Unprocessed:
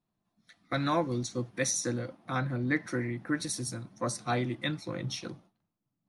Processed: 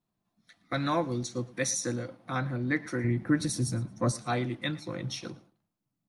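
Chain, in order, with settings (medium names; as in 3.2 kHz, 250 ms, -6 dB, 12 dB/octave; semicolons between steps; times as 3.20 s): 3.04–4.12 s: bass shelf 310 Hz +11 dB; on a send: feedback delay 112 ms, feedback 22%, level -21 dB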